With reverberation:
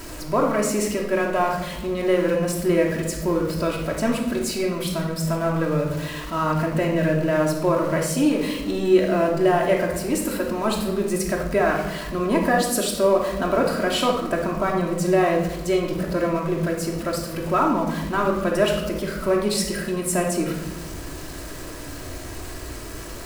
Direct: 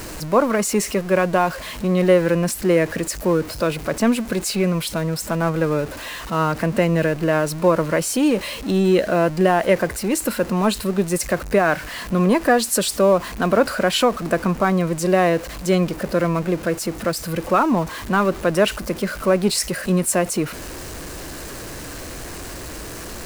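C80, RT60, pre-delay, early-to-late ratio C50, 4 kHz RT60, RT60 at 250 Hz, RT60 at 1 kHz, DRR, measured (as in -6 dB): 7.5 dB, 1.1 s, 3 ms, 4.5 dB, 0.65 s, 1.6 s, 0.85 s, -1.0 dB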